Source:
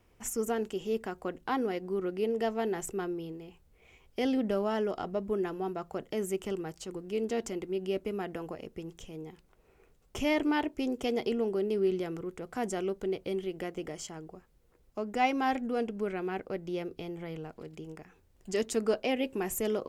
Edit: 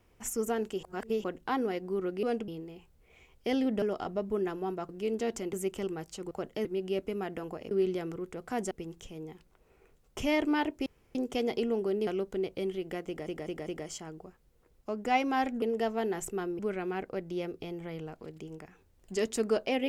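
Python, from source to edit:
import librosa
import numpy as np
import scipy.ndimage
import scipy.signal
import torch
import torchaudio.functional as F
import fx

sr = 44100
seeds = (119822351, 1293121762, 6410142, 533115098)

y = fx.edit(x, sr, fx.reverse_span(start_s=0.83, length_s=0.41),
    fx.swap(start_s=2.23, length_s=0.97, other_s=15.71, other_length_s=0.25),
    fx.cut(start_s=4.54, length_s=0.26),
    fx.swap(start_s=5.87, length_s=0.34, other_s=6.99, other_length_s=0.64),
    fx.insert_room_tone(at_s=10.84, length_s=0.29),
    fx.move(start_s=11.76, length_s=1.0, to_s=8.69),
    fx.stutter(start_s=13.76, slice_s=0.2, count=4), tone=tone)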